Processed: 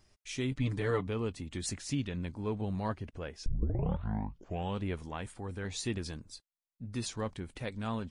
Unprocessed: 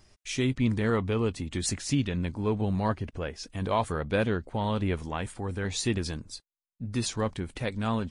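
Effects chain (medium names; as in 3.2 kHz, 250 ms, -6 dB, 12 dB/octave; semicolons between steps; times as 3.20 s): 0.51–1.07 s: comb 6.8 ms, depth 86%; 3.46 s: tape start 1.36 s; trim -7 dB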